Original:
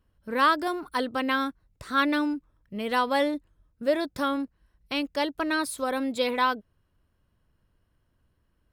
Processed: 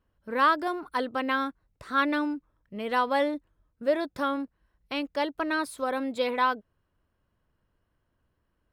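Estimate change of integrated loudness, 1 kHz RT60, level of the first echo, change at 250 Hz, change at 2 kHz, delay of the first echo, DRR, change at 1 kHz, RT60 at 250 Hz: -1.0 dB, none, none, -2.5 dB, -1.5 dB, none, none, -0.5 dB, none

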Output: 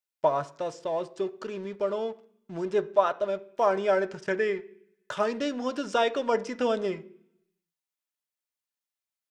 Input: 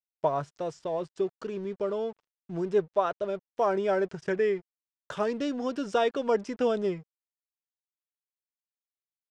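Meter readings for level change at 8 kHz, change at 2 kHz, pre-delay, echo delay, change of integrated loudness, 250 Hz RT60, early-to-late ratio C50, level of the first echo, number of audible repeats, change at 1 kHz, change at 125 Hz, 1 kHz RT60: n/a, +4.0 dB, 3 ms, none, +1.0 dB, 0.95 s, 18.5 dB, none, none, +2.5 dB, -3.0 dB, 0.60 s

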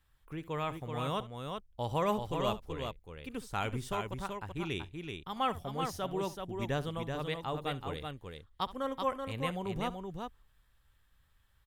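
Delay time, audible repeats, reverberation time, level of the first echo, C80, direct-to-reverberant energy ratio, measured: 67 ms, 2, none, -17.5 dB, none, none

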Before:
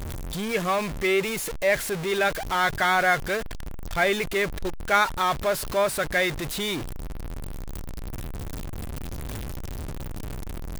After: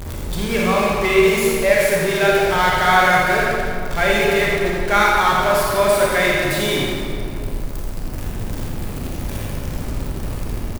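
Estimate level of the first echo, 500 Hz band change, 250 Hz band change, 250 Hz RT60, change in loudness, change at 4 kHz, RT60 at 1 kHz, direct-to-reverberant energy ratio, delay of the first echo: -5.5 dB, +9.0 dB, +9.5 dB, 2.8 s, +8.0 dB, +7.5 dB, 2.2 s, -4.5 dB, 84 ms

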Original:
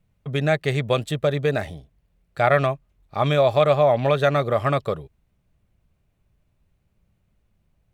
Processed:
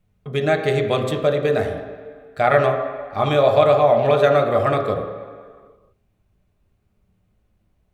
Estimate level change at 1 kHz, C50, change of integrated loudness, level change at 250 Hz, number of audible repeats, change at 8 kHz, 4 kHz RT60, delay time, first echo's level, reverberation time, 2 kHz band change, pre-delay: +3.5 dB, 6.0 dB, +2.5 dB, +1.5 dB, none, n/a, 1.4 s, none, none, 1.8 s, +1.5 dB, 3 ms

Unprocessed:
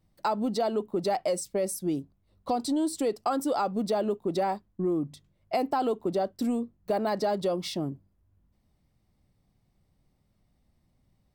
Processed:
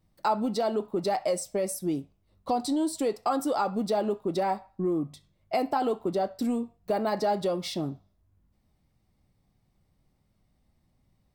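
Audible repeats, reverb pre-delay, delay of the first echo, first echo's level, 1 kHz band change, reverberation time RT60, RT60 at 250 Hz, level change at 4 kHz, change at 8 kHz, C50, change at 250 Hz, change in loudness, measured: none, 6 ms, none, none, +1.0 dB, 0.45 s, 0.55 s, +0.5 dB, 0.0 dB, 17.0 dB, 0.0 dB, +0.5 dB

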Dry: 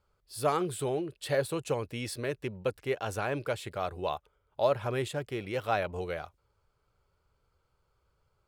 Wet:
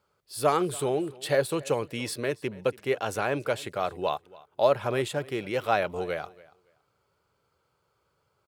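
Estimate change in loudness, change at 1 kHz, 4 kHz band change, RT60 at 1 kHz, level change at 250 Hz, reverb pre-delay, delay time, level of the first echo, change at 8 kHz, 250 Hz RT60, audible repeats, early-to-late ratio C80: +4.5 dB, +4.5 dB, +4.5 dB, none, +4.0 dB, none, 0.282 s, -22.0 dB, +4.5 dB, none, 1, none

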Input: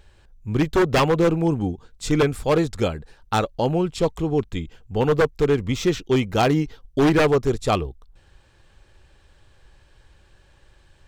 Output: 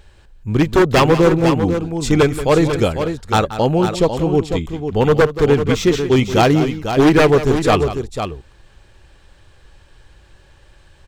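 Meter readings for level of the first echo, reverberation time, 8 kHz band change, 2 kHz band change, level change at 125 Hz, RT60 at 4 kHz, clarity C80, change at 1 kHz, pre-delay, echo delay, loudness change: -13.0 dB, none, +6.5 dB, +6.5 dB, +6.0 dB, none, none, +6.5 dB, none, 0.179 s, +6.0 dB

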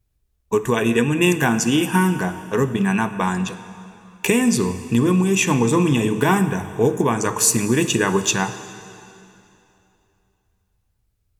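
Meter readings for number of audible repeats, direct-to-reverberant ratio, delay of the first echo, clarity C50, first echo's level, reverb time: none, 11.0 dB, none, 12.0 dB, none, 2.9 s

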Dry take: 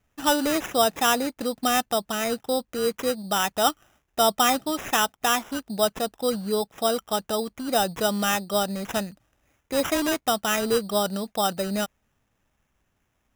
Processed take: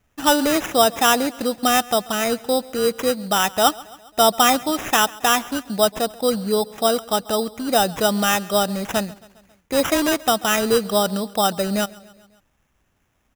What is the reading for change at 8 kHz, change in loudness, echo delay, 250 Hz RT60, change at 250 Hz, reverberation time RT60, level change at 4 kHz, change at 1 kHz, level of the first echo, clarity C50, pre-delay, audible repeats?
+5.0 dB, +5.0 dB, 0.136 s, none, +5.0 dB, none, +5.0 dB, +5.0 dB, -22.0 dB, none, none, 3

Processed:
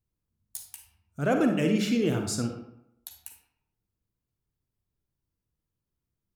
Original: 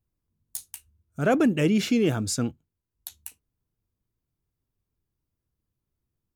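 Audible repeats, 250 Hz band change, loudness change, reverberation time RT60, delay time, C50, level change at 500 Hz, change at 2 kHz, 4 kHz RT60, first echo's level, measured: none, -2.5 dB, -2.5 dB, 0.80 s, none, 5.5 dB, -2.5 dB, -3.0 dB, 0.45 s, none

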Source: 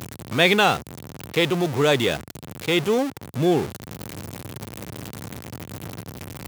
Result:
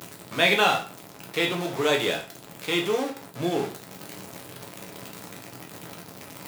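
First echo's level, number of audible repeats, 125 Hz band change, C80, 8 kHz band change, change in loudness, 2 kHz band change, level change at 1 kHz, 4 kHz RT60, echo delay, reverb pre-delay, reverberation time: none, none, -9.5 dB, 15.0 dB, -2.0 dB, -3.5 dB, -2.0 dB, -2.5 dB, 0.40 s, none, 5 ms, 0.40 s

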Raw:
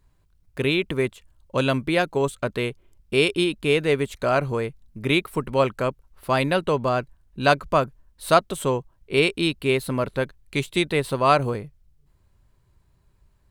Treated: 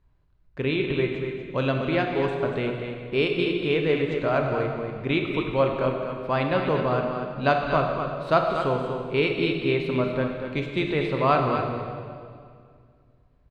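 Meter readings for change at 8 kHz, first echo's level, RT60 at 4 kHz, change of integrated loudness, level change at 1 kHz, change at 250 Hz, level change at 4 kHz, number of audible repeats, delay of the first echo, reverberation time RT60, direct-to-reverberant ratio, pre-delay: under -20 dB, -7.5 dB, 1.9 s, -2.0 dB, -1.5 dB, -0.5 dB, -5.5 dB, 1, 0.24 s, 2.2 s, 1.0 dB, 23 ms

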